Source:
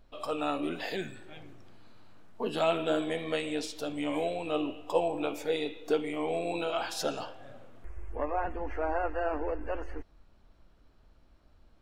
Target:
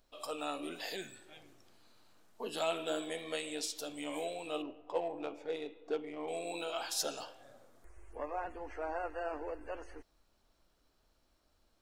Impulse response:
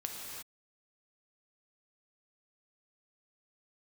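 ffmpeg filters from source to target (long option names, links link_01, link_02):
-filter_complex "[0:a]bass=frequency=250:gain=-8,treble=frequency=4000:gain=12,asettb=1/sr,asplit=3[link_01][link_02][link_03];[link_01]atrim=end=4.624[link_04];[link_02]atrim=start=4.62:end=6.28,asetpts=PTS-STARTPTS,afade=type=in:duration=0.004:curve=qsin,afade=type=out:start_time=1.656:duration=0.004:curve=qsin,adynamicsmooth=sensitivity=1.5:basefreq=1600[link_05];[link_03]atrim=start=6.276[link_06];[link_04][link_05]acrossfade=duration=0.004:curve1=hsin:curve2=qsin[link_07];[link_07][link_06]acrossfade=duration=0.004:curve1=qsin:curve2=hsin,asettb=1/sr,asplit=3[link_08][link_09][link_10];[link_08]atrim=end=7.434[link_11];[link_09]atrim=start=7.43:end=7.94,asetpts=PTS-STARTPTS,afade=type=in:duration=0.004:curve=qsin,afade=type=out:start_time=0.506:duration=0.004:curve=qsin,equalizer=frequency=2800:width=2.6:gain=-8[link_12];[link_10]atrim=start=7.936[link_13];[link_11][link_12]acrossfade=duration=0.004:curve1=hsin:curve2=qsin[link_14];[link_14][link_13]acrossfade=duration=0.004:curve1=qsin:curve2=hsin,volume=-7dB"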